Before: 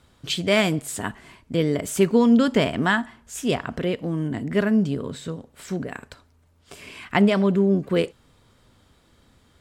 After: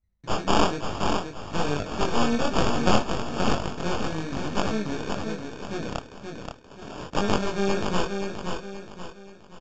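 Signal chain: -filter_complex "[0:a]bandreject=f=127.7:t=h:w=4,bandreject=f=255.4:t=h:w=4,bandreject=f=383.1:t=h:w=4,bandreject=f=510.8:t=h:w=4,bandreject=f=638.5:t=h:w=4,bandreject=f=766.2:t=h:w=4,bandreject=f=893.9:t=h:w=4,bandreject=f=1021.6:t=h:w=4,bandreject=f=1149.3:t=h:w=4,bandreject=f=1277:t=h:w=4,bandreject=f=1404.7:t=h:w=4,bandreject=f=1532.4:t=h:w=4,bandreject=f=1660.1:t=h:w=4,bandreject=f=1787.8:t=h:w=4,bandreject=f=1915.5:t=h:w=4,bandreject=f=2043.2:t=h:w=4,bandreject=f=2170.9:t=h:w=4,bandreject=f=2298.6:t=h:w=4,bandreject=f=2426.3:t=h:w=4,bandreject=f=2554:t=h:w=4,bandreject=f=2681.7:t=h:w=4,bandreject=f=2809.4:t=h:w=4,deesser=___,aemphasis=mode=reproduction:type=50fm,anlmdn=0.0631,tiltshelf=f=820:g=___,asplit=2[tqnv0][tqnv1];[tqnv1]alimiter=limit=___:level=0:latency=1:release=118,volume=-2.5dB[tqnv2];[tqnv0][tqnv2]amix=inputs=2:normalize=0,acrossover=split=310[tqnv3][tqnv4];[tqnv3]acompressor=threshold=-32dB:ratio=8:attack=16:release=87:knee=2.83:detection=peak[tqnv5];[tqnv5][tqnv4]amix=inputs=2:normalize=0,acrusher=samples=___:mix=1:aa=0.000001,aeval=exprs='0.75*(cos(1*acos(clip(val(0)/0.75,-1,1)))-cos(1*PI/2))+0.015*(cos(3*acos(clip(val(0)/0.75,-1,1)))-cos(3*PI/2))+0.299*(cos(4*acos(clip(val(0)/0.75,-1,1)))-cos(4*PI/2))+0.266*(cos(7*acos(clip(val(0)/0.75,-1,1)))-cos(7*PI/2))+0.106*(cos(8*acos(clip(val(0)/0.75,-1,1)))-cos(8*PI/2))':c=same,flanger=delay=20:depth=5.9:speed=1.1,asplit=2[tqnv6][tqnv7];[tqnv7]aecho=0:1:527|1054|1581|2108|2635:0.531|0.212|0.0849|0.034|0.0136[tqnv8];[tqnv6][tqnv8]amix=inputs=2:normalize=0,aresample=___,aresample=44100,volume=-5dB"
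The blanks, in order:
0.25, -7, -14.5dB, 22, 16000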